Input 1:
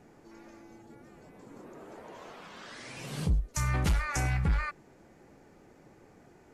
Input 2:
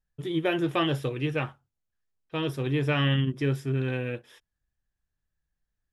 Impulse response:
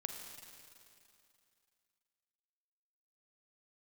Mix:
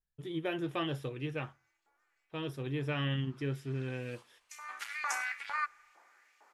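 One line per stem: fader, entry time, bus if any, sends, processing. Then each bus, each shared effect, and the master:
−3.5 dB, 0.95 s, send −19 dB, Butterworth high-pass 200 Hz; auto-filter high-pass saw up 2.2 Hz 840–2,800 Hz; automatic ducking −21 dB, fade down 1.90 s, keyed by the second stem
−9.0 dB, 0.00 s, no send, no processing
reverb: on, RT60 2.6 s, pre-delay 37 ms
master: no processing

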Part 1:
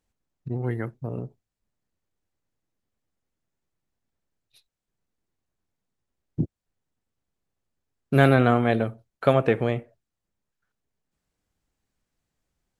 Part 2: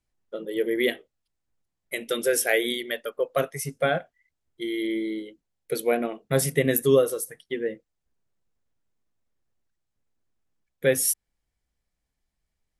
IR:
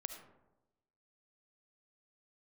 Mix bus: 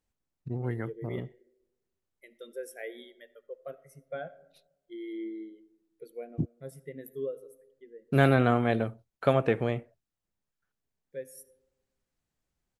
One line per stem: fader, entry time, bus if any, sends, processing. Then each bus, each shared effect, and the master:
−4.5 dB, 0.00 s, no send, no processing
0:03.82 −17.5 dB → 0:04.58 −10.5 dB → 0:05.56 −10.5 dB → 0:06.30 −21 dB, 0.30 s, send −5 dB, every bin expanded away from the loudest bin 1.5 to 1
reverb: on, RT60 1.0 s, pre-delay 30 ms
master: no processing

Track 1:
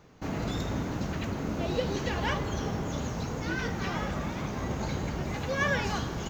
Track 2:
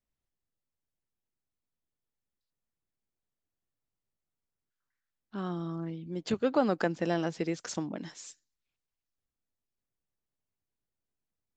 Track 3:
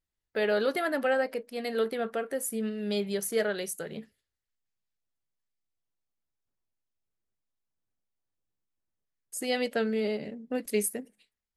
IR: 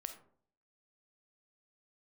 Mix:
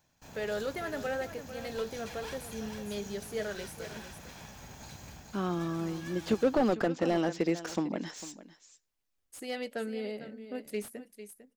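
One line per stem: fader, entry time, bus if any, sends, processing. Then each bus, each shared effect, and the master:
−3.0 dB, 0.00 s, no send, echo send −5 dB, lower of the sound and its delayed copy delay 1.2 ms; first-order pre-emphasis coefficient 0.8; automatic ducking −8 dB, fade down 0.20 s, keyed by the second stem
−7.5 dB, 0.00 s, no send, echo send −16.5 dB, parametric band 130 Hz −11.5 dB 0.5 octaves; automatic gain control gain up to 12 dB
−7.5 dB, 0.00 s, no send, echo send −12 dB, no processing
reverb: not used
echo: single-tap delay 450 ms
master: slew-rate limiting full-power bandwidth 46 Hz

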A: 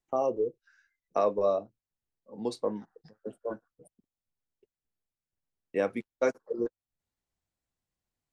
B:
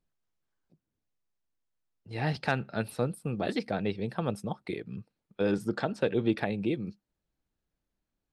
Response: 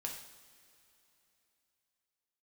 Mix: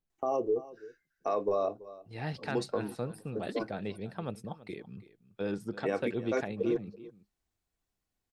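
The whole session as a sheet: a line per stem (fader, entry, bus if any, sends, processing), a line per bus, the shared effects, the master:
+1.0 dB, 0.10 s, no send, echo send −21 dB, comb filter 2.7 ms, depth 35%
−6.5 dB, 0.00 s, no send, echo send −17.5 dB, no processing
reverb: not used
echo: single-tap delay 332 ms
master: brickwall limiter −21 dBFS, peak gain reduction 7 dB

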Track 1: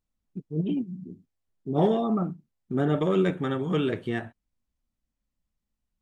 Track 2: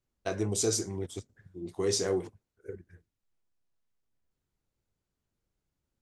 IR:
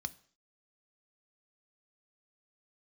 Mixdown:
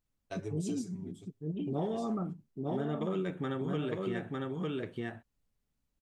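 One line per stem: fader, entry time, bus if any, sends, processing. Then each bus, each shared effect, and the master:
−1.5 dB, 0.00 s, no send, echo send −5.5 dB, no processing
−6.0 dB, 0.05 s, send −20.5 dB, no echo send, comb filter 7.1 ms, depth 73%; automatic ducking −11 dB, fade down 1.20 s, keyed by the first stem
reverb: on, RT60 0.50 s, pre-delay 3 ms
echo: single-tap delay 904 ms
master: downward compressor 4 to 1, threshold −32 dBFS, peak gain reduction 12 dB

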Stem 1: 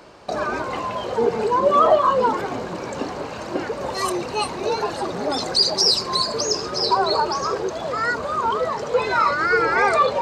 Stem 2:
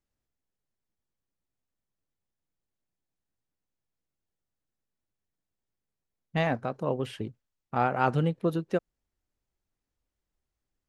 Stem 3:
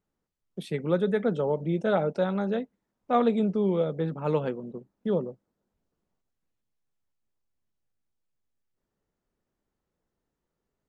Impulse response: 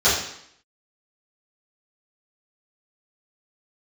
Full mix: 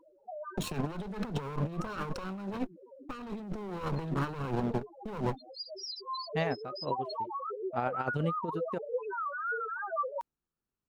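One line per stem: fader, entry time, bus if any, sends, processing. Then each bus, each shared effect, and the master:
−9.5 dB, 0.00 s, no send, downward compressor 3 to 1, threshold −24 dBFS, peak gain reduction 10.5 dB; spectral peaks only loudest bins 2; automatic ducking −10 dB, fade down 1.00 s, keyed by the third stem
−3.5 dB, 0.00 s, no send, low-shelf EQ 87 Hz −2.5 dB; expander for the loud parts 2.5 to 1, over −46 dBFS
−6.5 dB, 0.00 s, no send, lower of the sound and its delayed copy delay 0.72 ms; leveller curve on the samples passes 3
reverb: not used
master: compressor whose output falls as the input rises −32 dBFS, ratio −0.5

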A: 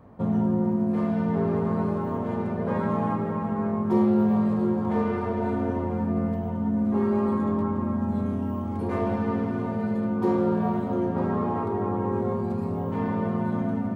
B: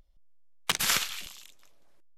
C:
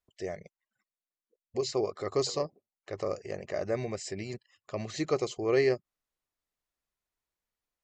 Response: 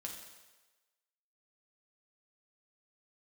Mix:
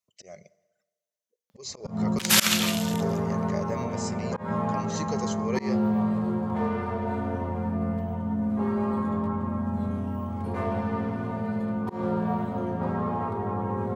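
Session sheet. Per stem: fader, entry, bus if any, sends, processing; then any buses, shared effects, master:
0.0 dB, 1.65 s, no send, no processing
+2.5 dB, 1.50 s, send −10.5 dB, Butterworth high-pass 180 Hz; automatic gain control gain up to 8 dB
−0.5 dB, 0.00 s, send −13.5 dB, high-pass filter 150 Hz 12 dB per octave; parametric band 6,200 Hz +8.5 dB 0.24 octaves; phaser whose notches keep moving one way rising 0.5 Hz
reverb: on, RT60 1.2 s, pre-delay 5 ms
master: volume swells 152 ms; parametric band 320 Hz −9.5 dB 0.69 octaves

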